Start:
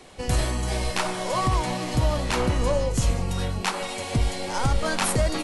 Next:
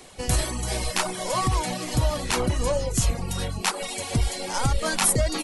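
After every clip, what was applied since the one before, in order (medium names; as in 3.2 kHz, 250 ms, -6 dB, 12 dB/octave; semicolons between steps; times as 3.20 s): reverb removal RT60 0.67 s; treble shelf 6.3 kHz +10.5 dB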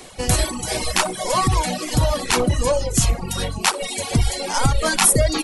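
hum notches 60/120 Hz; flutter echo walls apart 10.5 m, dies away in 0.35 s; reverb removal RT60 0.83 s; trim +6.5 dB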